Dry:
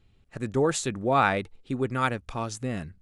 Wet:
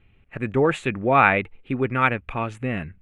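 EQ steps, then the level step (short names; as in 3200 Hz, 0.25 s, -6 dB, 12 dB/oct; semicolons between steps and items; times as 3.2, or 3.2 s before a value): resonant high shelf 3600 Hz -13.5 dB, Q 3; +4.0 dB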